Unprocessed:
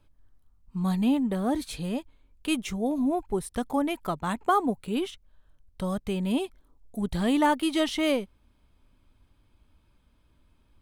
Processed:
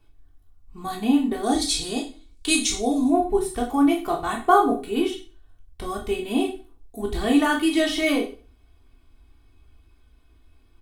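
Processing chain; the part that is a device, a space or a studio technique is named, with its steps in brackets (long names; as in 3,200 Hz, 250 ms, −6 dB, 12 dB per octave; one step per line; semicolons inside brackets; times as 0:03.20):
0:01.43–0:03.10: flat-topped bell 5,700 Hz +12.5 dB
microphone above a desk (comb filter 2.7 ms, depth 86%; convolution reverb RT60 0.40 s, pre-delay 13 ms, DRR 0.5 dB)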